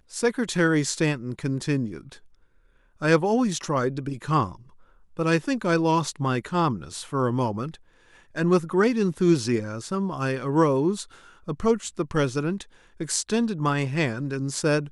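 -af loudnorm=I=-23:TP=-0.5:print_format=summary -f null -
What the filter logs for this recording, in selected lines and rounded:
Input Integrated:    -25.0 LUFS
Input True Peak:      -5.9 dBTP
Input LRA:             2.5 LU
Input Threshold:     -35.7 LUFS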